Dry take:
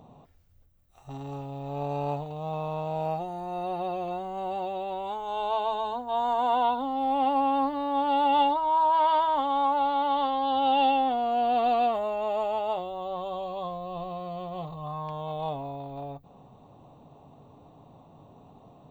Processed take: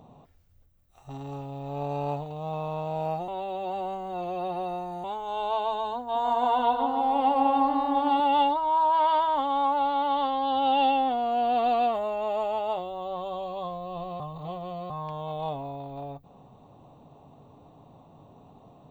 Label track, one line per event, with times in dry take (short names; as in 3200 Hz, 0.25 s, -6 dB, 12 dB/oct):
3.280000	5.040000	reverse
6.000000	8.200000	darkening echo 0.152 s, feedback 71%, level -4.5 dB
14.200000	14.900000	reverse